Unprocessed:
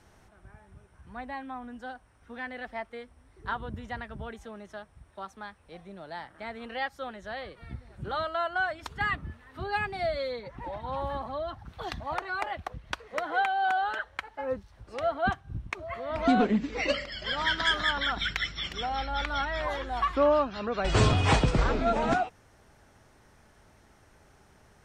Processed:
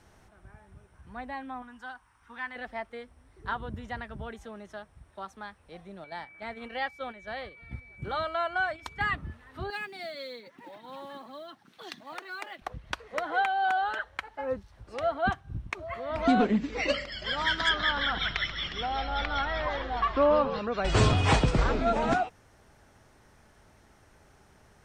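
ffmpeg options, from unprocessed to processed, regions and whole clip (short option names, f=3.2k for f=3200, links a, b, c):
-filter_complex "[0:a]asettb=1/sr,asplit=3[a][b][c];[a]atrim=end=1.624[d];[b]atrim=start=1.62:end=2.56,asetpts=PTS-STARTPTS,afade=t=in:d=0.004:c=qsin,afade=t=out:st=0.936:d=0.004:c=qsin,lowshelf=f=770:t=q:w=3:g=-7,bandreject=f=4.1k:w=27[e];[c]atrim=start=2.556[f];[d][e]acrossfade=d=0.004:c1=hsin:c2=qsin[g];[g][f]acrossfade=d=0.004:c1=qsin:c2=hsin,asettb=1/sr,asplit=3[h][i][j];[h]atrim=end=6.044[k];[i]atrim=start=6.04:end=9.03,asetpts=PTS-STARTPTS,afade=t=in:d=0.004:c=qsin,afade=t=out:st=2.986:d=0.004:c=qsin,agate=range=-7dB:threshold=-43dB:ratio=16:release=100:detection=peak,aeval=exprs='val(0)+0.00316*sin(2*PI*2300*n/s)':c=same[l];[j]atrim=start=9.026[m];[k][l]acrossfade=d=0.004:c1=hsin:c2=qsin[n];[n][m]acrossfade=d=0.004:c1=qsin:c2=hsin,asettb=1/sr,asplit=3[o][p][q];[o]atrim=end=9.704[r];[p]atrim=start=9.7:end=12.62,asetpts=PTS-STARTPTS,afade=t=in:d=0.004:c=qsin,afade=t=out:st=2.916:d=0.004:c=qsin,highpass=f=230:w=0.5412,highpass=f=230:w=1.3066,equalizer=f=770:t=o:w=2:g=-11.5,acrusher=bits=7:mode=log:mix=0:aa=0.000001[s];[q]atrim=start=12.616[t];[r][s]acrossfade=d=0.004:c1=hsin:c2=qsin[u];[u][t]acrossfade=d=0.004:c1=qsin:c2=hsin,asettb=1/sr,asplit=3[v][w][x];[v]atrim=end=17.694[y];[w]atrim=start=17.69:end=20.59,asetpts=PTS-STARTPTS,afade=t=in:d=0.004:c=qsin,afade=t=out:st=2.896:d=0.004:c=qsin,lowpass=f=5.4k:w=0.5412,lowpass=f=5.4k:w=1.3066,asplit=7[z][aa][ab][ac][ad][ae][af];[aa]adelay=135,afreqshift=-63,volume=-10.5dB[ag];[ab]adelay=270,afreqshift=-126,volume=-16.2dB[ah];[ac]adelay=405,afreqshift=-189,volume=-21.9dB[ai];[ad]adelay=540,afreqshift=-252,volume=-27.5dB[aj];[ae]adelay=675,afreqshift=-315,volume=-33.2dB[ak];[af]adelay=810,afreqshift=-378,volume=-38.9dB[al];[z][ag][ah][ai][aj][ak][al]amix=inputs=7:normalize=0,atrim=end_sample=127890[am];[x]atrim=start=20.586[an];[y][am]acrossfade=d=0.004:c1=hsin:c2=qsin[ao];[ao][an]acrossfade=d=0.004:c1=qsin:c2=hsin"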